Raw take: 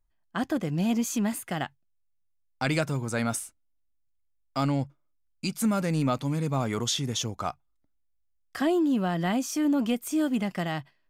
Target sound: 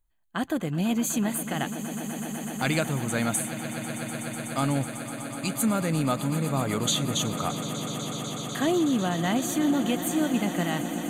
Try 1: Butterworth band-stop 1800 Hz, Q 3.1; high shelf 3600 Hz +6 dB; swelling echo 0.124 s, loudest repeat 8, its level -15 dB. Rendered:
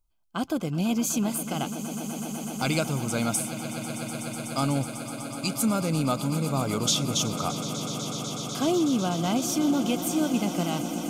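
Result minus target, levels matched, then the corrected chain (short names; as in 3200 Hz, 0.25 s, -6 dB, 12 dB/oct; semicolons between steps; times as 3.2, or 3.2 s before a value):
2000 Hz band -4.0 dB
Butterworth band-stop 5300 Hz, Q 3.1; high shelf 3600 Hz +6 dB; swelling echo 0.124 s, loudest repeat 8, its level -15 dB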